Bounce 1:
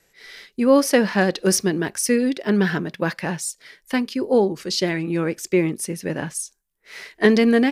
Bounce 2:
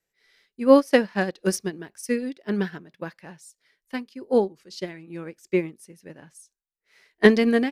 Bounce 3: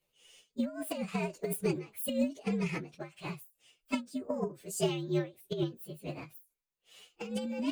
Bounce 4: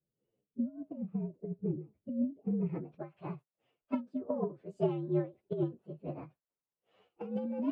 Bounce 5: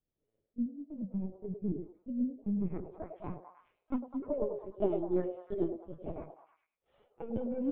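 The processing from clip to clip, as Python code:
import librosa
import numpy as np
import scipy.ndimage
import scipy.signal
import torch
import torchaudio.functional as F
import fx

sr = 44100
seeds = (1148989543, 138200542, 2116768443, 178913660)

y1 = fx.upward_expand(x, sr, threshold_db=-26.0, expansion=2.5)
y1 = F.gain(torch.from_numpy(y1), 2.5).numpy()
y2 = fx.partial_stretch(y1, sr, pct=119)
y2 = fx.over_compress(y2, sr, threshold_db=-32.0, ratio=-1.0)
y2 = fx.end_taper(y2, sr, db_per_s=210.0)
y3 = scipy.signal.sosfilt(scipy.signal.butter(2, 72.0, 'highpass', fs=sr, output='sos'), y2)
y3 = fx.filter_sweep_lowpass(y3, sr, from_hz=270.0, to_hz=1000.0, start_s=2.42, end_s=2.94, q=0.82)
y4 = fx.lpc_vocoder(y3, sr, seeds[0], excitation='pitch_kept', order=16)
y4 = fx.peak_eq(y4, sr, hz=2700.0, db=-6.5, octaves=0.37)
y4 = fx.echo_stepped(y4, sr, ms=102, hz=550.0, octaves=0.7, feedback_pct=70, wet_db=-3)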